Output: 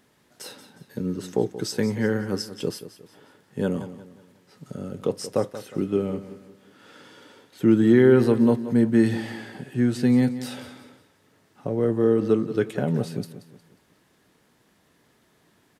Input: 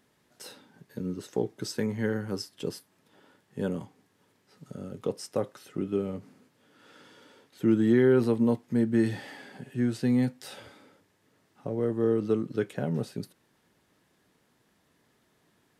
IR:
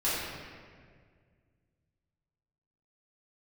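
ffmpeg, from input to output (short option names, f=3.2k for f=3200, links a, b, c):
-af "aecho=1:1:180|360|540|720:0.211|0.0824|0.0321|0.0125,volume=5.5dB"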